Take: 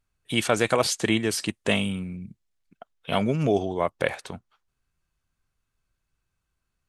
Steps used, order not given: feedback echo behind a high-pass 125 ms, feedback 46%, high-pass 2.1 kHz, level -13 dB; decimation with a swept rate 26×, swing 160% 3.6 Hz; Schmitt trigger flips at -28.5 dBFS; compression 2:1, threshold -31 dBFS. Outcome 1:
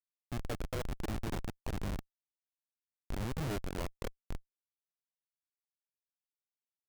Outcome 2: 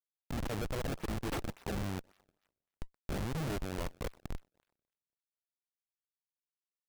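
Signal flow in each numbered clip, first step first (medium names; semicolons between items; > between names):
feedback echo behind a high-pass > decimation with a swept rate > compression > Schmitt trigger; compression > Schmitt trigger > feedback echo behind a high-pass > decimation with a swept rate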